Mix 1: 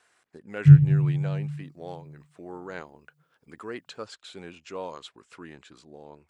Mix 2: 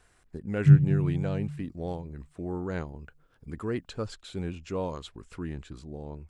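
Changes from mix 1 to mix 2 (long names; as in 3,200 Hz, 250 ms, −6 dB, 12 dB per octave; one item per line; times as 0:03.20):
speech: remove meter weighting curve A
background −4.5 dB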